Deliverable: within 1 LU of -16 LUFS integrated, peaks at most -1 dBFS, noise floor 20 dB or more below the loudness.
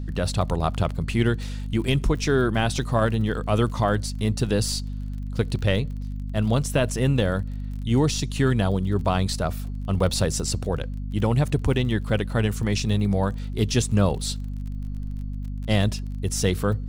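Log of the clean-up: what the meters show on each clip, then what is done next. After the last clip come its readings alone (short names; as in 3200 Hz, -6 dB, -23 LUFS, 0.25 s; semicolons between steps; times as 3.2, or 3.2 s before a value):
ticks 34/s; hum 50 Hz; harmonics up to 250 Hz; hum level -28 dBFS; loudness -24.5 LUFS; peak -9.0 dBFS; loudness target -16.0 LUFS
-> de-click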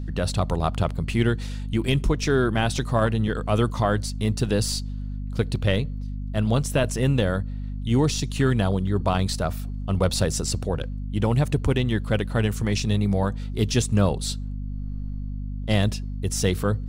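ticks 0.12/s; hum 50 Hz; harmonics up to 250 Hz; hum level -28 dBFS
-> notches 50/100/150/200/250 Hz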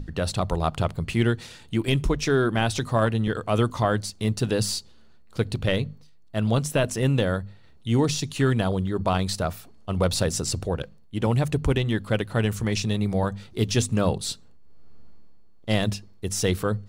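hum none; loudness -25.5 LUFS; peak -9.0 dBFS; loudness target -16.0 LUFS
-> gain +9.5 dB; limiter -1 dBFS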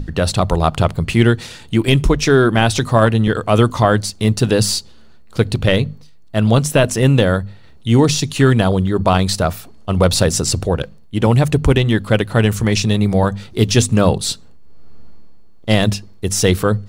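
loudness -16.0 LUFS; peak -1.0 dBFS; noise floor -39 dBFS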